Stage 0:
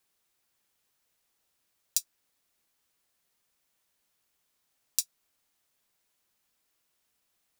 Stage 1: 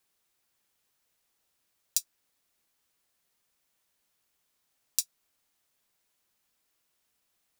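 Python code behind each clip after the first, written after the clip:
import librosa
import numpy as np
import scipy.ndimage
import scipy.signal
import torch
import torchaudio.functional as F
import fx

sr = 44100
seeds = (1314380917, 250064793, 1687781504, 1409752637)

y = x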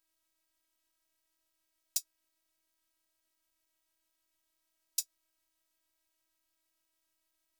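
y = fx.robotise(x, sr, hz=321.0)
y = fx.low_shelf(y, sr, hz=82.0, db=9.0)
y = y * librosa.db_to_amplitude(-2.5)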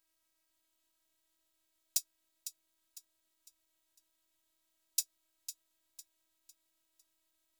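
y = fx.echo_feedback(x, sr, ms=503, feedback_pct=37, wet_db=-11.5)
y = y * librosa.db_to_amplitude(1.0)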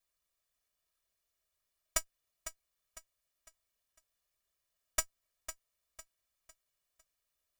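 y = fx.lower_of_two(x, sr, delay_ms=1.7)
y = y * librosa.db_to_amplitude(3.5)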